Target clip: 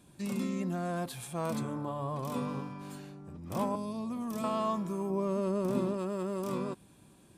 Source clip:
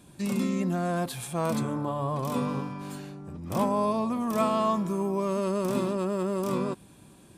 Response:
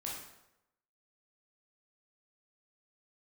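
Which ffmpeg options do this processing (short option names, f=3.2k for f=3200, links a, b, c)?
-filter_complex "[0:a]asettb=1/sr,asplit=3[a][b][c];[a]atrim=end=3.754[d];[b]atrim=start=3.75:end=4.44,asetpts=PTS-STARTPTS,afade=t=in:d=0.004:c=qsin,afade=t=out:st=0.686:d=0.004:c=qsin,acrossover=split=330|3000[e][f][g];[f]acompressor=threshold=-37dB:ratio=6[h];[e][h][g]amix=inputs=3:normalize=0[i];[c]atrim=start=4.436[j];[d][i]acrossfade=d=0.004:c1=hsin:c2=qsin[k];[k][j]acrossfade=d=0.004:c1=qsin:c2=hsin,asettb=1/sr,asplit=3[l][m][n];[l]atrim=end=5.104[o];[m]atrim=start=5.1:end=5.94,asetpts=PTS-STARTPTS,afade=t=in:d=0.004:c=qsin,afade=t=out:st=0.836:d=0.004:c=qsin,tiltshelf=f=970:g=4[p];[n]atrim=start=5.936[q];[o][p]acrossfade=d=0.004:c1=hsin:c2=qsin[r];[r][q]acrossfade=d=0.004:c1=qsin:c2=hsin,volume=-6dB"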